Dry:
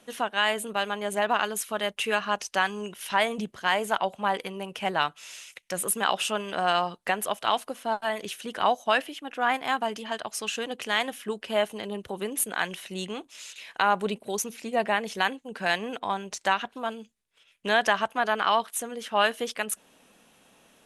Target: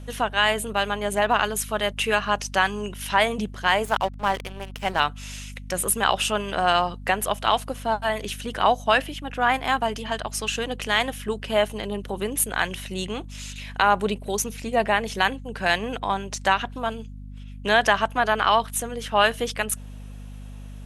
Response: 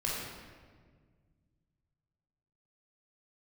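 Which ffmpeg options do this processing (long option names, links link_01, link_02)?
-filter_complex "[0:a]asettb=1/sr,asplit=3[link_01][link_02][link_03];[link_01]atrim=end=3.854[link_04];[link_02]atrim=start=3.85:end=5,asetpts=PTS-STARTPTS,afade=type=in:duration=0.004:curve=qsin,afade=type=out:start_time=1.146:duration=0.004:curve=qsin,aeval=exprs='sgn(val(0))*max(abs(val(0))-0.0141,0)':channel_layout=same[link_05];[link_03]atrim=start=4.996[link_06];[link_04][link_05]acrossfade=duration=0.004:curve1=hsin:curve2=qsin[link_07];[link_07][link_06]acrossfade=duration=0.004:curve1=qsin:curve2=hsin,aeval=exprs='val(0)+0.00891*(sin(2*PI*50*n/s)+sin(2*PI*2*50*n/s)/2+sin(2*PI*3*50*n/s)/3+sin(2*PI*4*50*n/s)/4+sin(2*PI*5*50*n/s)/5)':channel_layout=same,volume=4dB"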